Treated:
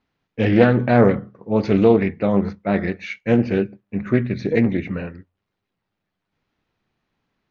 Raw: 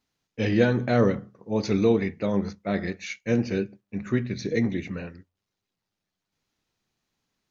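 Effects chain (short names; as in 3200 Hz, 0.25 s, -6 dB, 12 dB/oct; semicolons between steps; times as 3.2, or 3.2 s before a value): LPF 2600 Hz 12 dB/oct; Doppler distortion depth 0.22 ms; gain +7 dB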